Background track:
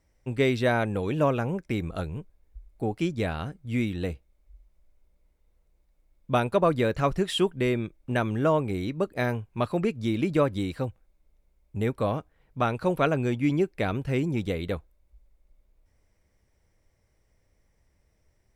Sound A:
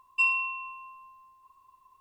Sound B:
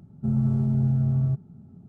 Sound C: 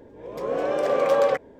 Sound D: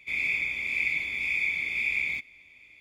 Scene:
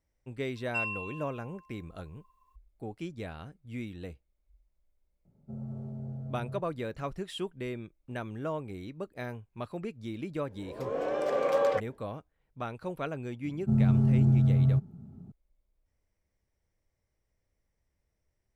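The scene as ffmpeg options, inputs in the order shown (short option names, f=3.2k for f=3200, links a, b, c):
-filter_complex "[2:a]asplit=2[a][b];[0:a]volume=-11.5dB[c];[a]equalizer=f=550:t=o:w=0.85:g=15[d];[1:a]atrim=end=2,asetpts=PTS-STARTPTS,volume=-8.5dB,afade=t=in:d=0.004:c=hsin,afade=t=out:st=1.996:d=0.004:c=hsin,adelay=560[e];[d]atrim=end=1.88,asetpts=PTS-STARTPTS,volume=-17.5dB,afade=t=in:d=0.004:c=hsin,afade=t=out:st=1.876:d=0.004:c=hsin,adelay=231525S[f];[3:a]atrim=end=1.59,asetpts=PTS-STARTPTS,volume=-6.5dB,afade=t=in:d=0.1,afade=t=out:st=1.49:d=0.1,adelay=10430[g];[b]atrim=end=1.88,asetpts=PTS-STARTPTS,volume=-0.5dB,afade=t=in:d=0.004:c=hsin,afade=t=out:st=1.876:d=0.004:c=hsin,adelay=13440[h];[c][e][f][g][h]amix=inputs=5:normalize=0"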